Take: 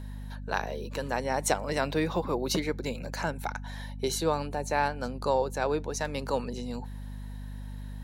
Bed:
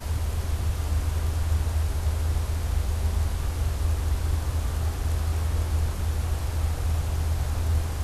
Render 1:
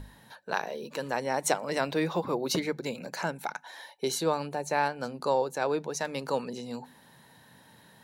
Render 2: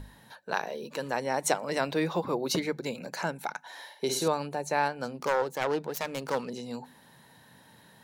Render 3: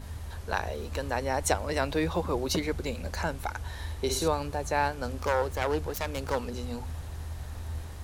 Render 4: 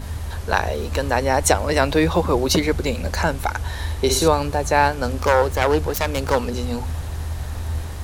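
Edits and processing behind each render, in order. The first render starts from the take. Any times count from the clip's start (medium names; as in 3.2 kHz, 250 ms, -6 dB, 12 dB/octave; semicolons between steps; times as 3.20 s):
hum notches 50/100/150/200/250 Hz
3.60–4.28 s: flutter echo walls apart 9.3 m, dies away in 0.51 s; 5.14–6.52 s: self-modulated delay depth 0.28 ms
add bed -12 dB
trim +10.5 dB; peak limiter -1 dBFS, peak gain reduction 2 dB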